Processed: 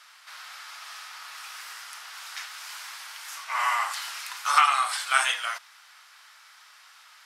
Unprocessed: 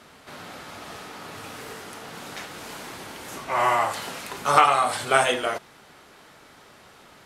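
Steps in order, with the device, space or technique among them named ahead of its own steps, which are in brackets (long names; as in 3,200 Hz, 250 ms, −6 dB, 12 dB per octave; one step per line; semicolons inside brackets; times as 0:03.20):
headphones lying on a table (high-pass filter 1,100 Hz 24 dB per octave; parametric band 5,200 Hz +5 dB 0.41 octaves)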